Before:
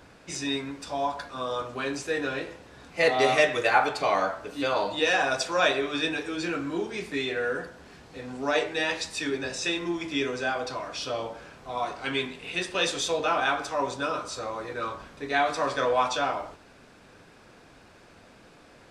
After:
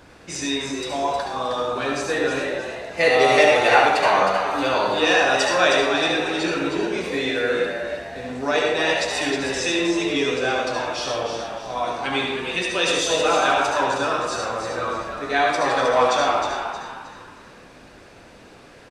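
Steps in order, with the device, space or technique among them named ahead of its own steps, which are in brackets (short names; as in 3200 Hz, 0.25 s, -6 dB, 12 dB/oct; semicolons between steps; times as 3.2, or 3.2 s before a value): bathroom (reverb RT60 0.60 s, pre-delay 65 ms, DRR 0.5 dB); frequency-shifting echo 0.313 s, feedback 37%, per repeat +99 Hz, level -7 dB; gain +3.5 dB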